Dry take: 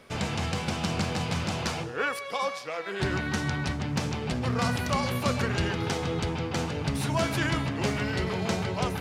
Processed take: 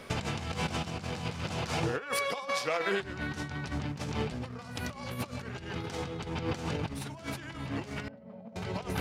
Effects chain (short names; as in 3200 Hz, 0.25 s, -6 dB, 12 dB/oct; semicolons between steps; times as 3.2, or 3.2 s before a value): negative-ratio compressor -34 dBFS, ratio -0.5; 8.08–8.56 double band-pass 360 Hz, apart 1.3 oct